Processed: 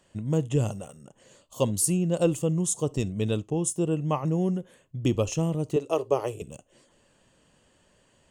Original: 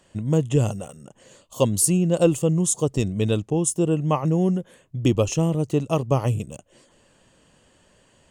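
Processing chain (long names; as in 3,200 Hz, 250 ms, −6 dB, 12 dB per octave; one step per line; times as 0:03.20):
0:05.76–0:06.42: low shelf with overshoot 280 Hz −11 dB, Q 3
convolution reverb, pre-delay 3 ms, DRR 20 dB
level −5 dB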